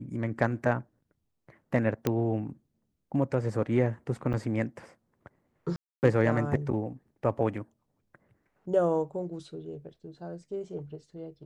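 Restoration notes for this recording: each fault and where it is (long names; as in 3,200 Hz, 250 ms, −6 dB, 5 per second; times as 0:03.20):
0:02.07: click −12 dBFS
0:04.33–0:04.34: drop-out 7 ms
0:05.76–0:06.03: drop-out 269 ms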